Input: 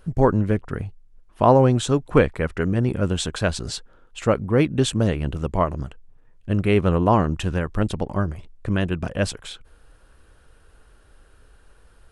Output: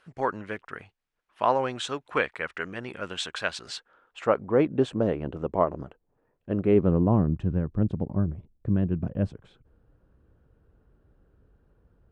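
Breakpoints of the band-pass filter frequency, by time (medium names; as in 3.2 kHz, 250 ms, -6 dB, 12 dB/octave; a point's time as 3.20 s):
band-pass filter, Q 0.79
3.69 s 2.1 kHz
4.73 s 520 Hz
6.50 s 520 Hz
7.12 s 160 Hz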